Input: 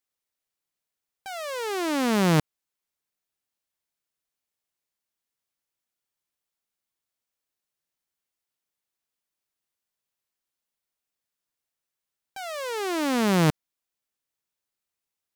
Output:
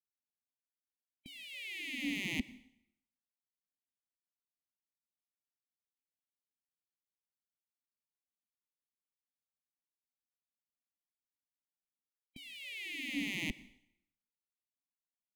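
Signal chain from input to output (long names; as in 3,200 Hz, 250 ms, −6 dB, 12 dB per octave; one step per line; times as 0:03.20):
hum removal 285.5 Hz, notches 29
gate on every frequency bin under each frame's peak −15 dB weak
drawn EQ curve 120 Hz 0 dB, 270 Hz +9 dB, 460 Hz −21 dB, 1,100 Hz −28 dB, 2,000 Hz +6 dB, 5,700 Hz −27 dB, 9,000 Hz −20 dB
in parallel at −5 dB: soft clipping −29.5 dBFS, distortion −12 dB
on the sum: Butterworth band-reject 1,500 Hz, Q 0.78
on a send at −19 dB: convolution reverb RT60 0.75 s, pre-delay 83 ms
on the sum: level +1 dB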